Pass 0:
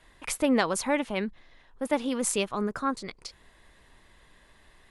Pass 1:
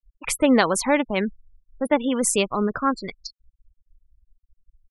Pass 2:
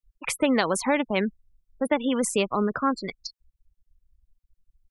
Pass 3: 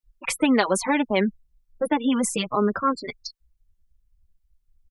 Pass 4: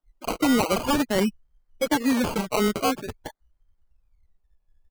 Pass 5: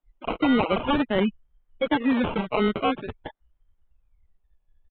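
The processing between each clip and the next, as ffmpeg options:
ffmpeg -i in.wav -af "afftfilt=real='re*gte(hypot(re,im),0.0158)':imag='im*gte(hypot(re,im),0.0158)':win_size=1024:overlap=0.75,volume=6.5dB" out.wav
ffmpeg -i in.wav -filter_complex "[0:a]acrossover=split=97|1100|2400[link_01][link_02][link_03][link_04];[link_01]acompressor=threshold=-57dB:ratio=4[link_05];[link_02]acompressor=threshold=-20dB:ratio=4[link_06];[link_03]acompressor=threshold=-30dB:ratio=4[link_07];[link_04]acompressor=threshold=-29dB:ratio=4[link_08];[link_05][link_06][link_07][link_08]amix=inputs=4:normalize=0" out.wav
ffmpeg -i in.wav -filter_complex "[0:a]asplit=2[link_01][link_02];[link_02]adelay=4.2,afreqshift=-2[link_03];[link_01][link_03]amix=inputs=2:normalize=1,volume=4.5dB" out.wav
ffmpeg -i in.wav -af "acrusher=samples=20:mix=1:aa=0.000001:lfo=1:lforange=12:lforate=0.48,volume=15.5dB,asoftclip=hard,volume=-15.5dB" out.wav
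ffmpeg -i in.wav -af "aresample=8000,aresample=44100" out.wav

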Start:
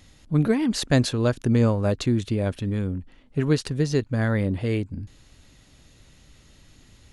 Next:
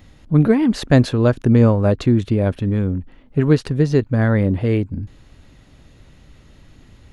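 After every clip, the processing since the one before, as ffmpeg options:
ffmpeg -i in.wav -af "equalizer=frequency=8200:width_type=o:width=2.5:gain=-12,volume=7dB" out.wav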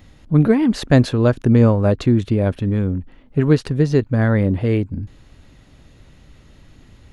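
ffmpeg -i in.wav -af anull out.wav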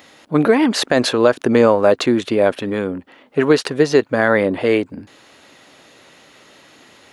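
ffmpeg -i in.wav -af "highpass=460,alimiter=level_in=11dB:limit=-1dB:release=50:level=0:latency=1,volume=-1dB" out.wav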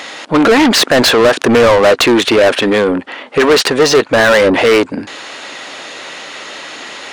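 ffmpeg -i in.wav -filter_complex "[0:a]aresample=22050,aresample=44100,asplit=2[link_01][link_02];[link_02]highpass=frequency=720:poles=1,volume=27dB,asoftclip=type=tanh:threshold=-1.5dB[link_03];[link_01][link_03]amix=inputs=2:normalize=0,lowpass=frequency=6300:poles=1,volume=-6dB" out.wav

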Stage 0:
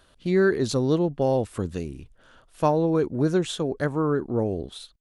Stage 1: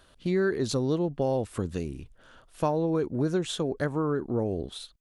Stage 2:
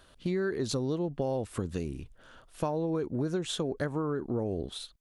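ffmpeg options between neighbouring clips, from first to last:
ffmpeg -i in.wav -af "acompressor=threshold=-26dB:ratio=2" out.wav
ffmpeg -i in.wav -af "acompressor=threshold=-28dB:ratio=3" out.wav

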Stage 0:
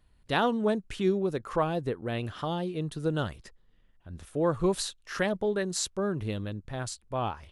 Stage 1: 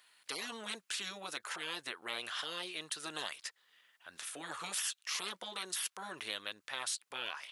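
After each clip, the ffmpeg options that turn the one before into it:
ffmpeg -i in.wav -filter_complex "[0:a]highpass=1500,afftfilt=real='re*lt(hypot(re,im),0.0178)':imag='im*lt(hypot(re,im),0.0178)':win_size=1024:overlap=0.75,asplit=2[link_01][link_02];[link_02]acompressor=threshold=-56dB:ratio=6,volume=1dB[link_03];[link_01][link_03]amix=inputs=2:normalize=0,volume=6.5dB" out.wav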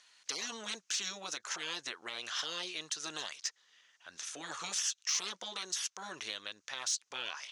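ffmpeg -i in.wav -af "alimiter=level_in=3dB:limit=-24dB:level=0:latency=1:release=204,volume=-3dB,lowpass=frequency=6200:width_type=q:width=4.9,asoftclip=type=tanh:threshold=-20dB" out.wav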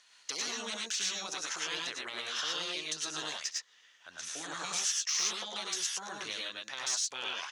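ffmpeg -i in.wav -af "aecho=1:1:67|92|103|116:0.126|0.376|0.708|0.708" out.wav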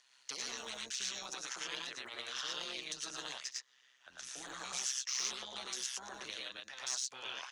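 ffmpeg -i in.wav -filter_complex "[0:a]tremolo=f=130:d=0.75,acrossover=split=240|560|6100[link_01][link_02][link_03][link_04];[link_01]aeval=exprs='(mod(531*val(0)+1,2)-1)/531':channel_layout=same[link_05];[link_05][link_02][link_03][link_04]amix=inputs=4:normalize=0,volume=-2.5dB" out.wav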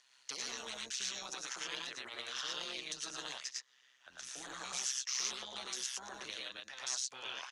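ffmpeg -i in.wav -af "aresample=32000,aresample=44100" out.wav

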